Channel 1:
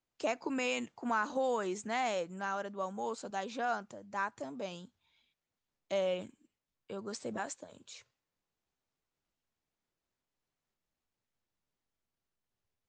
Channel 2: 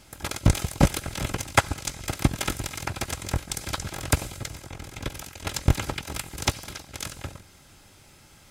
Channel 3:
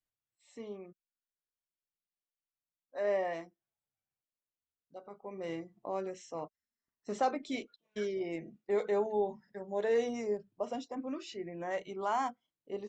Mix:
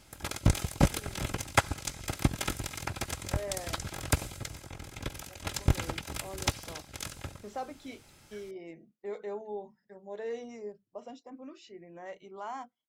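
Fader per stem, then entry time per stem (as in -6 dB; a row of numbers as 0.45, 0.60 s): off, -5.0 dB, -7.5 dB; off, 0.00 s, 0.35 s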